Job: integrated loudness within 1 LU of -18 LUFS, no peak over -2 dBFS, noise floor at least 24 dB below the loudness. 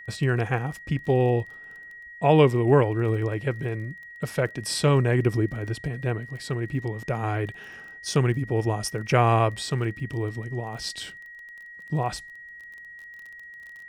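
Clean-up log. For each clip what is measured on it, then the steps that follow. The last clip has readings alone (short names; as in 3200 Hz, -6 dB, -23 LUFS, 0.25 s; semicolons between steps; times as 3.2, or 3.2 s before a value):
ticks 22/s; steady tone 1900 Hz; tone level -41 dBFS; loudness -25.5 LUFS; peak -5.0 dBFS; loudness target -18.0 LUFS
-> de-click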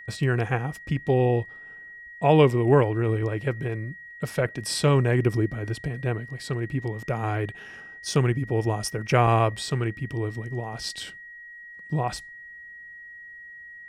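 ticks 0/s; steady tone 1900 Hz; tone level -41 dBFS
-> notch 1900 Hz, Q 30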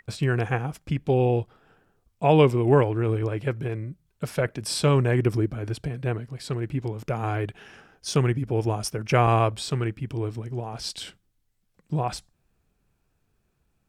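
steady tone none; loudness -25.5 LUFS; peak -5.0 dBFS; loudness target -18.0 LUFS
-> gain +7.5 dB; limiter -2 dBFS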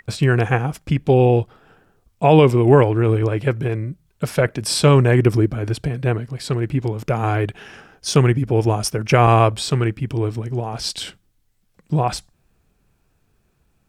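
loudness -18.5 LUFS; peak -2.0 dBFS; noise floor -65 dBFS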